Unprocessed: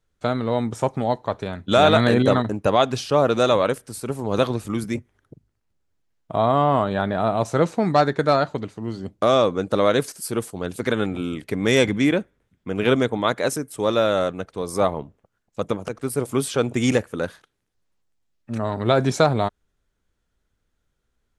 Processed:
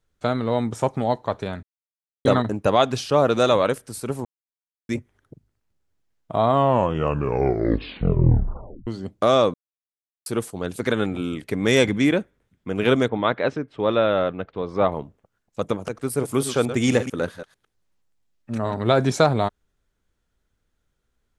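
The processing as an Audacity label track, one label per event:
1.630000	2.250000	silence
4.250000	4.890000	silence
6.510000	6.510000	tape stop 2.36 s
9.540000	10.260000	silence
13.080000	14.920000	low-pass filter 3,500 Hz 24 dB per octave
16.100000	18.740000	delay that plays each chunk backwards 111 ms, level −10.5 dB

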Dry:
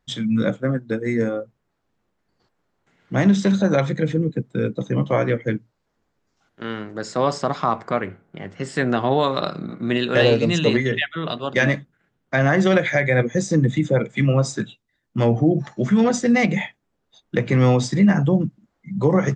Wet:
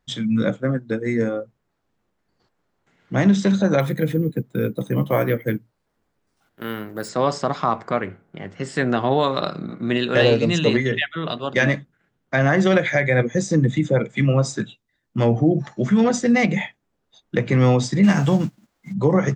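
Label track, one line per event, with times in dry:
3.800000	7.090000	bad sample-rate conversion rate divided by 3×, down none, up hold
18.030000	18.920000	spectral envelope flattened exponent 0.6

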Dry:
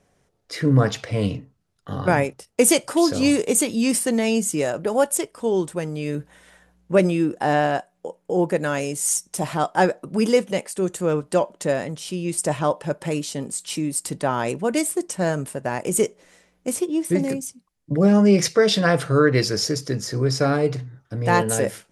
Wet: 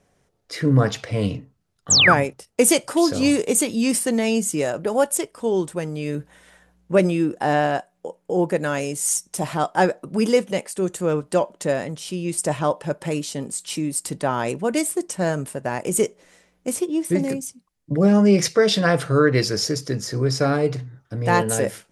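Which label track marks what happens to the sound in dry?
1.900000	2.140000	sound drawn into the spectrogram fall 1,000–8,300 Hz −14 dBFS

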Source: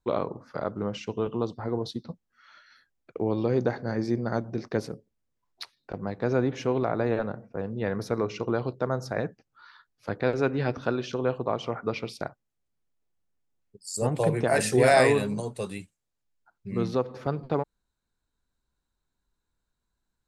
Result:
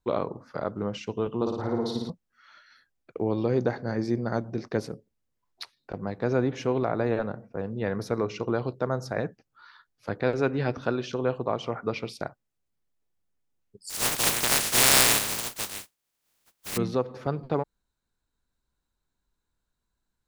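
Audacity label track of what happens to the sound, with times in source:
1.360000	2.100000	flutter between parallel walls apart 9.6 metres, dies away in 1 s
13.890000	16.760000	compressing power law on the bin magnitudes exponent 0.11

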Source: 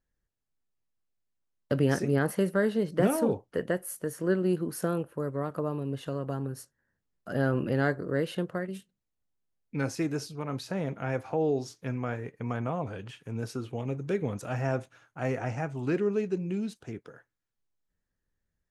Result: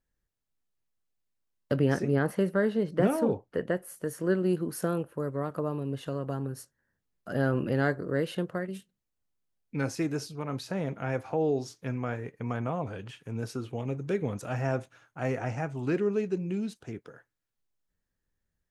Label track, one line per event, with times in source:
1.760000	3.970000	high-shelf EQ 4,800 Hz −8.5 dB

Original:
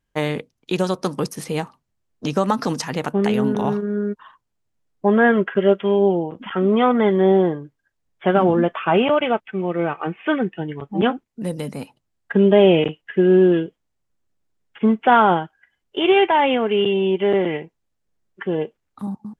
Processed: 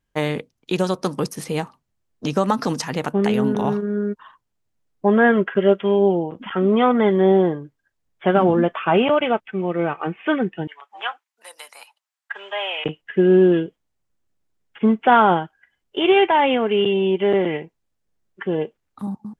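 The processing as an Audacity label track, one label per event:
10.670000	12.850000	high-pass filter 880 Hz 24 dB per octave

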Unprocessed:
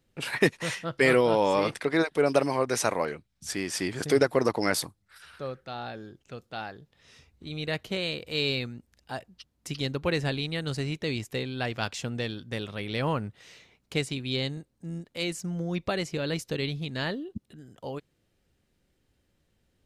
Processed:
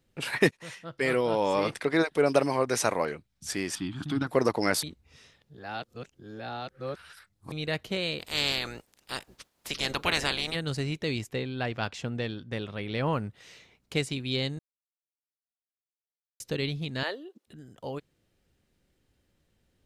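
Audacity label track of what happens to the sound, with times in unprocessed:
0.510000	1.870000	fade in, from −15 dB
3.750000	4.270000	drawn EQ curve 300 Hz 0 dB, 460 Hz −28 dB, 820 Hz −6 dB, 1,300 Hz −1 dB, 2,000 Hz −15 dB, 3,400 Hz +1 dB, 5,200 Hz −17 dB
4.830000	7.520000	reverse
8.190000	10.540000	ceiling on every frequency bin ceiling under each frame's peak by 25 dB
11.290000	13.130000	high-shelf EQ 5,500 Hz −12 dB
14.590000	16.400000	silence
17.030000	17.470000	high-pass filter 380 Hz 24 dB per octave

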